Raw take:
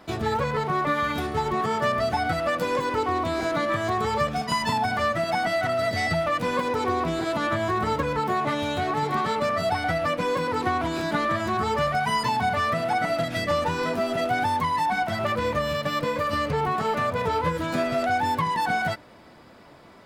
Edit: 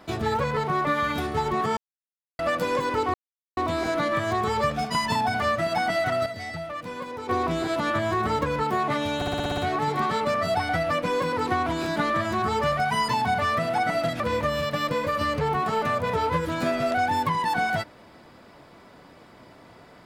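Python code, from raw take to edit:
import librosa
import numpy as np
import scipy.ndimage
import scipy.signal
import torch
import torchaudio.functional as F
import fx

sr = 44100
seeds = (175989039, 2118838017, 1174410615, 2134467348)

y = fx.edit(x, sr, fx.silence(start_s=1.77, length_s=0.62),
    fx.insert_silence(at_s=3.14, length_s=0.43),
    fx.clip_gain(start_s=5.83, length_s=1.03, db=-9.5),
    fx.stutter(start_s=8.73, slice_s=0.06, count=8),
    fx.cut(start_s=13.35, length_s=1.97), tone=tone)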